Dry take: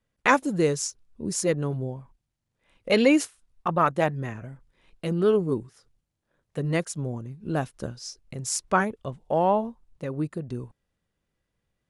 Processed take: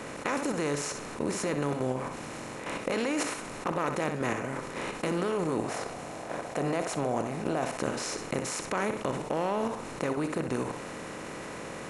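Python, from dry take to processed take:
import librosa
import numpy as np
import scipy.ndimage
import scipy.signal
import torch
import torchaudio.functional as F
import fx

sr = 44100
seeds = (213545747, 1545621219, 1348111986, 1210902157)

y = fx.bin_compress(x, sr, power=0.4)
y = fx.peak_eq(y, sr, hz=700.0, db=10.5, octaves=0.43, at=(5.58, 7.77))
y = fx.level_steps(y, sr, step_db=11)
y = fx.room_flutter(y, sr, wall_m=10.7, rt60_s=0.34)
y = fx.env_flatten(y, sr, amount_pct=50)
y = F.gain(torch.from_numpy(y), -8.0).numpy()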